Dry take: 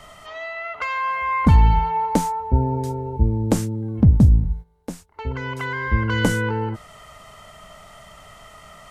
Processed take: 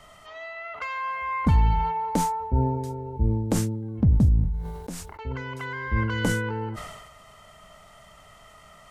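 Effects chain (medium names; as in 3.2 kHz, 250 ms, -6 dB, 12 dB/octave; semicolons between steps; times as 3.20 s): decay stretcher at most 44 dB/s; trim -6.5 dB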